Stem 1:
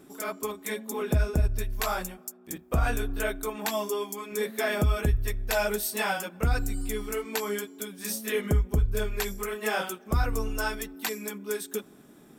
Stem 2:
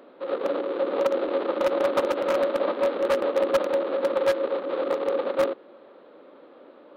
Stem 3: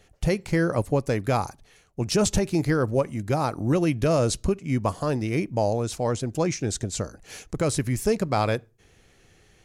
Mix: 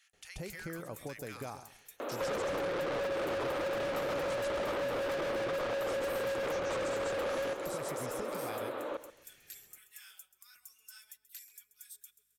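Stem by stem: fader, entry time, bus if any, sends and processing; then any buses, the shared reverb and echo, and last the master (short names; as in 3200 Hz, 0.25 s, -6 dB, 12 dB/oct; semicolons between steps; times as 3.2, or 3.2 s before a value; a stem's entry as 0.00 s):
-12.5 dB, 0.30 s, bus A, no send, echo send -19.5 dB, differentiator; hum 50 Hz, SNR 23 dB
-13.5 dB, 2.00 s, no bus, no send, echo send -14.5 dB, overdrive pedal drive 37 dB, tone 3400 Hz, clips at -8 dBFS
-5.0 dB, 0.00 s, bus A, no send, echo send -4.5 dB, low shelf 130 Hz -10 dB; compressor 4:1, threshold -31 dBFS, peak gain reduction 11 dB
bus A: 0.0 dB, HPF 1400 Hz 24 dB/oct; limiter -35.5 dBFS, peak gain reduction 11 dB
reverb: off
echo: feedback echo 0.133 s, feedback 23%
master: compressor 5:1, threshold -33 dBFS, peak gain reduction 7.5 dB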